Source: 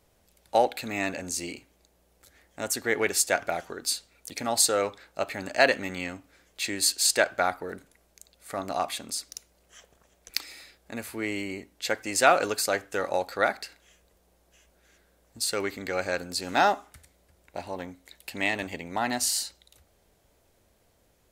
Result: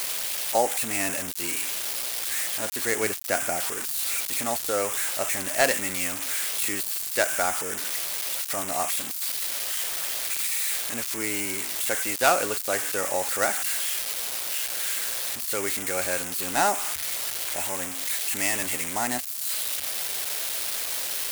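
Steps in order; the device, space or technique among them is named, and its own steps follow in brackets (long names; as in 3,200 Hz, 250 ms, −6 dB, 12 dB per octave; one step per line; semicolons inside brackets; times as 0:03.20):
0:03.03–0:03.58: graphic EQ with 15 bands 100 Hz +5 dB, 250 Hz +5 dB, 4,000 Hz −10 dB, 10,000 Hz −5 dB
budget class-D amplifier (gap after every zero crossing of 0.11 ms; spike at every zero crossing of −11.5 dBFS)
level −1 dB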